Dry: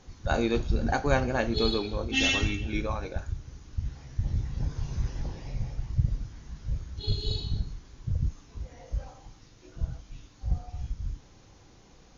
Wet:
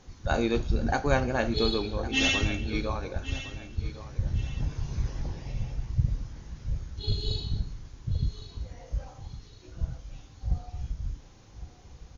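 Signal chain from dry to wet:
repeating echo 1,109 ms, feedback 33%, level −14.5 dB

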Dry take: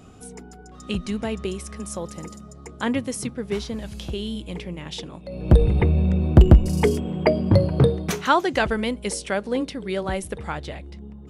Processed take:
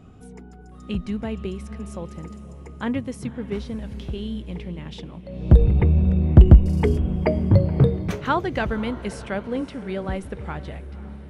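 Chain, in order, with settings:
bass and treble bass +6 dB, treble −10 dB
on a send: feedback delay with all-pass diffusion 532 ms, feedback 49%, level −16 dB
on the sum: level −4 dB

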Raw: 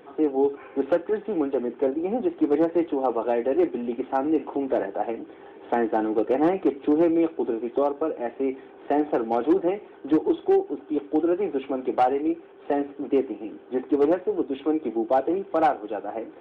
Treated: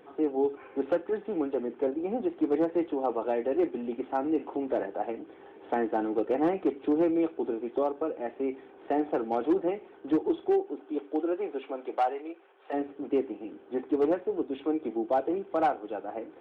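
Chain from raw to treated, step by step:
0:10.52–0:12.72: high-pass filter 190 Hz → 780 Hz 12 dB per octave
level −5 dB

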